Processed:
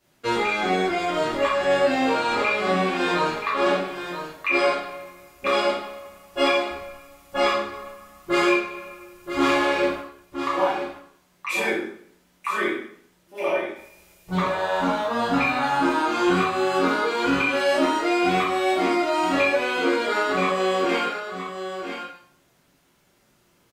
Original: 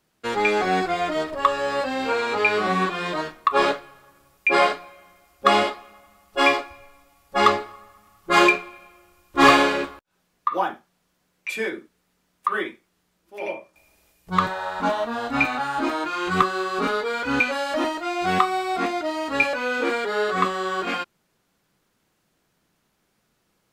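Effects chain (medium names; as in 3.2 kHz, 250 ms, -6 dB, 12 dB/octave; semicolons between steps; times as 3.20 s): compression 6:1, threshold -26 dBFS, peak gain reduction 15.5 dB; on a send: delay 976 ms -9 dB; on the sum: plate-style reverb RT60 0.62 s, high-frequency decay 0.9×, DRR -9 dB; trim -2.5 dB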